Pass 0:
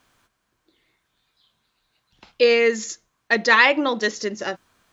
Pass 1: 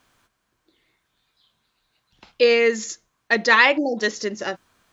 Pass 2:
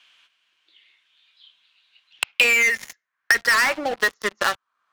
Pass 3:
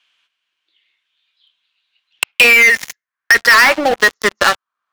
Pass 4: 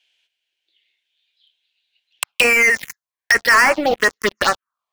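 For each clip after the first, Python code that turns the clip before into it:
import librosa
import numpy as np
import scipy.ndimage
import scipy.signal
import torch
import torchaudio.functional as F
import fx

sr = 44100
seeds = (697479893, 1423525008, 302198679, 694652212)

y1 = fx.spec_erase(x, sr, start_s=3.78, length_s=0.2, low_hz=860.0, high_hz=4200.0)
y2 = fx.filter_sweep_bandpass(y1, sr, from_hz=2900.0, to_hz=1200.0, start_s=2.03, end_s=3.98, q=3.9)
y2 = fx.leveller(y2, sr, passes=5)
y2 = fx.band_squash(y2, sr, depth_pct=100)
y2 = y2 * 10.0 ** (-3.5 / 20.0)
y3 = fx.leveller(y2, sr, passes=3)
y4 = fx.env_phaser(y3, sr, low_hz=200.0, high_hz=3700.0, full_db=-7.0)
y4 = y4 * 10.0 ** (-1.0 / 20.0)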